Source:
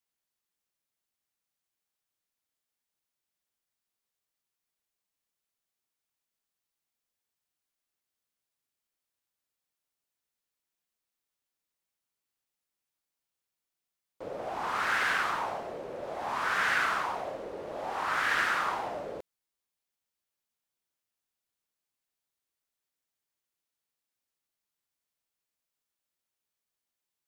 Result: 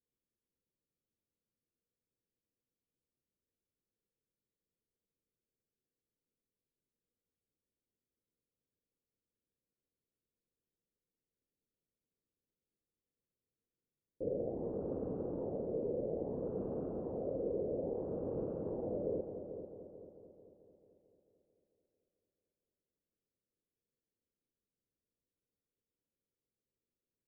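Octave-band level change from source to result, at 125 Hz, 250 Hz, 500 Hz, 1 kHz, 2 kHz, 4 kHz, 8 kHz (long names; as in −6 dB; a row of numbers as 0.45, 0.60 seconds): +7.0 dB, +6.5 dB, +2.0 dB, −23.5 dB, below −40 dB, below −40 dB, below −30 dB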